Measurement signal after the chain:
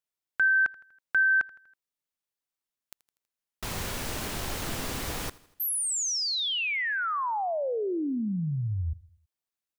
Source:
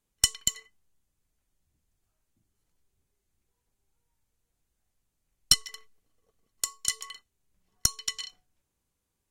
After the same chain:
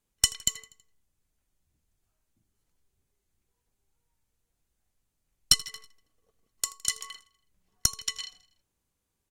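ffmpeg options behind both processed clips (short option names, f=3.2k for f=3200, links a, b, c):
-af "aecho=1:1:81|162|243|324:0.0891|0.0472|0.025|0.0133"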